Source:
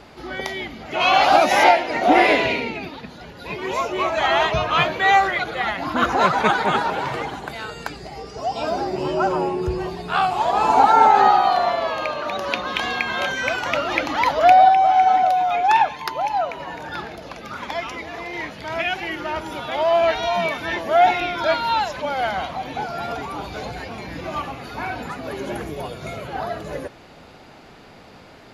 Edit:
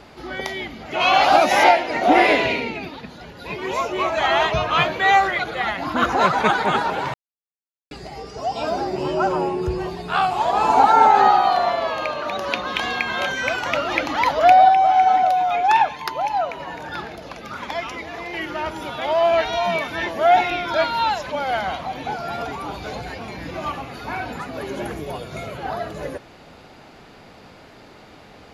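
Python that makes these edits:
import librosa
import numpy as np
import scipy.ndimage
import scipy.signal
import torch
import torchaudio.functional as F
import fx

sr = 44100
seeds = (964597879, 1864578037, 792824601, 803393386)

y = fx.edit(x, sr, fx.silence(start_s=7.14, length_s=0.77),
    fx.cut(start_s=18.34, length_s=0.7), tone=tone)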